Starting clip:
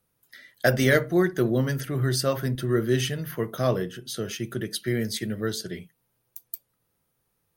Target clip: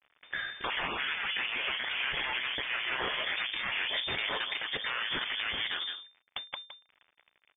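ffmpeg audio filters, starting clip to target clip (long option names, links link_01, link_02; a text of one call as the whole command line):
ffmpeg -i in.wav -filter_complex "[0:a]aeval=exprs='if(lt(val(0),0),0.251*val(0),val(0))':channel_layout=same,acrusher=bits=8:dc=4:mix=0:aa=0.000001,equalizer=frequency=1400:width=0.44:gain=9,asplit=2[link_01][link_02];[link_02]adelay=163.3,volume=-15dB,highshelf=frequency=4000:gain=-3.67[link_03];[link_01][link_03]amix=inputs=2:normalize=0,asplit=2[link_04][link_05];[link_05]acompressor=threshold=-36dB:ratio=6,volume=-1dB[link_06];[link_04][link_06]amix=inputs=2:normalize=0,lowpass=frequency=3100:width_type=q:width=0.5098,lowpass=frequency=3100:width_type=q:width=0.6013,lowpass=frequency=3100:width_type=q:width=0.9,lowpass=frequency=3100:width_type=q:width=2.563,afreqshift=-3600,afftfilt=real='re*lt(hypot(re,im),0.112)':imag='im*lt(hypot(re,im),0.112)':win_size=1024:overlap=0.75,acontrast=39,alimiter=level_in=0.5dB:limit=-24dB:level=0:latency=1:release=412,volume=-0.5dB,volume=2.5dB" out.wav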